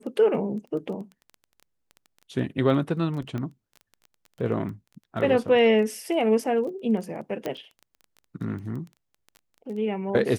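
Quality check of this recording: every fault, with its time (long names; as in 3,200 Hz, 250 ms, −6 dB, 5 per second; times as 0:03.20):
surface crackle 11 per second −35 dBFS
0:03.38: click −21 dBFS
0:07.46: click −16 dBFS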